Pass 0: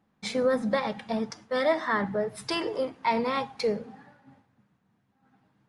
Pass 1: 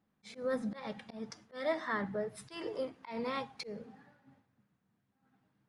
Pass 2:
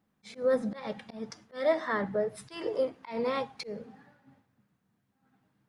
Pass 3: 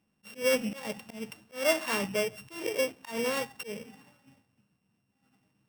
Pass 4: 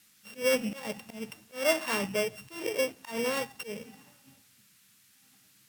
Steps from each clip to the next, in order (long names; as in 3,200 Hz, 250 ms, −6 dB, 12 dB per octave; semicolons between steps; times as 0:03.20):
parametric band 870 Hz −3 dB 0.64 octaves; volume swells 178 ms; level −7.5 dB
dynamic equaliser 530 Hz, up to +6 dB, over −46 dBFS, Q 1.4; level +3 dB
samples sorted by size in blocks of 16 samples
noise in a band 1,300–15,000 Hz −63 dBFS